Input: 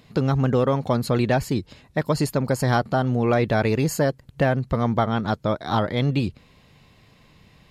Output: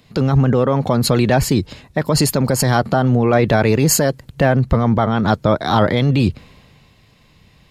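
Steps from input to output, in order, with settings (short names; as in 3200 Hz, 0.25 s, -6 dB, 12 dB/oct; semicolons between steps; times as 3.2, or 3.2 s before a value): maximiser +17.5 dB; three-band expander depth 40%; gain -5 dB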